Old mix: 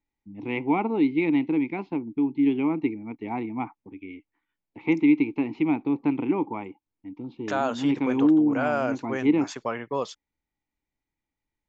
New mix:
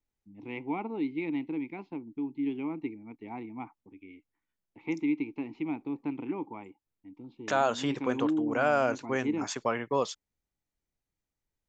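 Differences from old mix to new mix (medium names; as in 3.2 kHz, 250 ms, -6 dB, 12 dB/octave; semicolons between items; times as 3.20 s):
first voice -10.0 dB; master: remove distance through air 52 m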